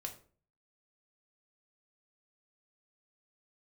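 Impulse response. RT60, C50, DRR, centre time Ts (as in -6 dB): 0.45 s, 11.5 dB, 2.5 dB, 12 ms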